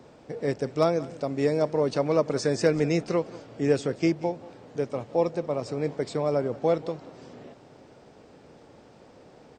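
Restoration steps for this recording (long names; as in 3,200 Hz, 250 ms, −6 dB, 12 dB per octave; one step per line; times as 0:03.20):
clipped peaks rebuilt −10 dBFS
echo removal 183 ms −19.5 dB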